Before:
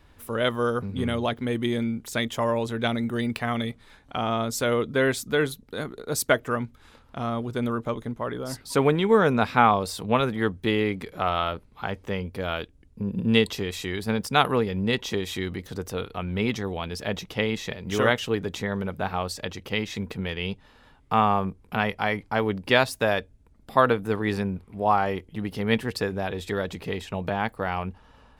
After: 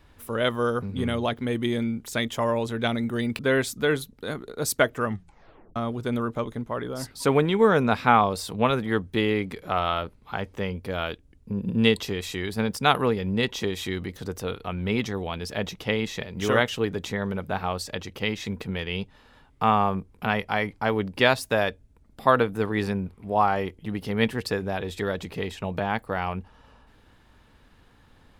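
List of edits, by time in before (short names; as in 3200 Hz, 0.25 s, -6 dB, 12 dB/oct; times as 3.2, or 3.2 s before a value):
3.39–4.89 cut
6.55 tape stop 0.71 s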